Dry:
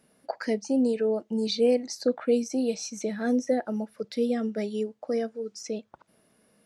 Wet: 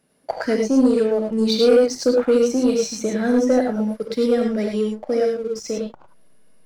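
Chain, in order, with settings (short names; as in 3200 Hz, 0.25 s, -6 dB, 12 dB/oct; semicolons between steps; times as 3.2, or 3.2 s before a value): non-linear reverb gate 0.13 s rising, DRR 1.5 dB; sample leveller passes 1; in parallel at -7.5 dB: backlash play -24 dBFS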